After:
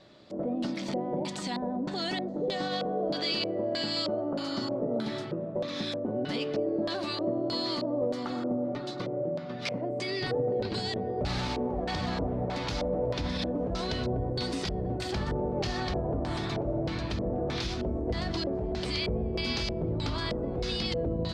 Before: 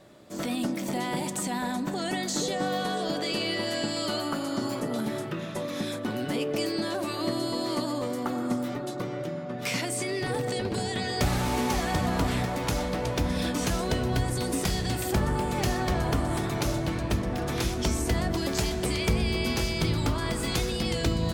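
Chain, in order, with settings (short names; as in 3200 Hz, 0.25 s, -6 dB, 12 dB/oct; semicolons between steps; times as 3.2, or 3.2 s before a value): limiter -20 dBFS, peak gain reduction 6 dB; LFO low-pass square 1.6 Hz 560–4400 Hz; gain -3 dB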